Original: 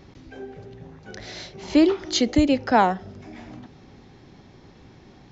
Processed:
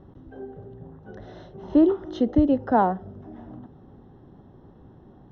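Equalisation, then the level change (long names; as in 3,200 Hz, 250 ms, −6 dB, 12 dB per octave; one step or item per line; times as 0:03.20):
moving average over 19 samples
high-frequency loss of the air 110 metres
0.0 dB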